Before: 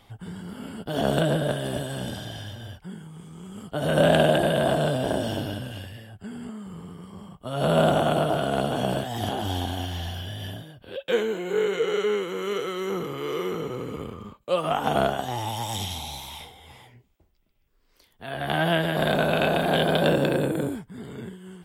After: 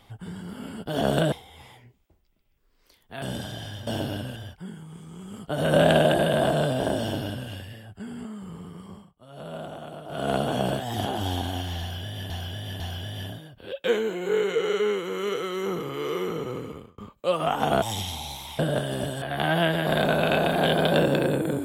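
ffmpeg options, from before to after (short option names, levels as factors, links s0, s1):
-filter_complex "[0:a]asplit=13[s0][s1][s2][s3][s4][s5][s6][s7][s8][s9][s10][s11][s12];[s0]atrim=end=1.322[s13];[s1]atrim=start=16.418:end=18.322[s14];[s2]atrim=start=1.948:end=2.602[s15];[s3]atrim=start=5.238:end=5.732[s16];[s4]atrim=start=2.598:end=7.35,asetpts=PTS-STARTPTS,afade=t=out:st=4.542:d=0.21:silence=0.141254[s17];[s5]atrim=start=7.35:end=8.32,asetpts=PTS-STARTPTS,volume=0.141[s18];[s6]atrim=start=8.32:end=10.542,asetpts=PTS-STARTPTS,afade=t=in:d=0.21:silence=0.141254[s19];[s7]atrim=start=10.038:end=10.542[s20];[s8]atrim=start=10.038:end=14.22,asetpts=PTS-STARTPTS,afade=t=out:st=3.752:d=0.43[s21];[s9]atrim=start=14.22:end=15.062,asetpts=PTS-STARTPTS,afade=t=in:d=0.004:c=hsin[s22];[s10]atrim=start=15.648:end=16.422[s23];[s11]atrim=start=1.318:end=1.952[s24];[s12]atrim=start=18.318[s25];[s13][s14]acrossfade=d=0.004:c1=hsin:c2=hsin[s26];[s26][s15]acrossfade=d=0.004:c1=hsin:c2=hsin[s27];[s27][s16]acrossfade=d=0.004:c1=hsin:c2=hsin[s28];[s17][s18][s19]concat=n=3:v=0:a=1[s29];[s28][s29]acrossfade=d=0.004:c1=hsin:c2=hsin[s30];[s30][s20]acrossfade=d=0.004:c1=hsin:c2=hsin[s31];[s21][s22]concat=n=2:v=0:a=1[s32];[s31][s32]acrossfade=d=0.004:c1=hsin:c2=hsin[s33];[s33][s23]acrossfade=d=0.004:c1=hsin:c2=hsin[s34];[s34][s24]acrossfade=d=0.004:c1=hsin:c2=hsin[s35];[s35][s25]acrossfade=d=0.004:c1=hsin:c2=hsin"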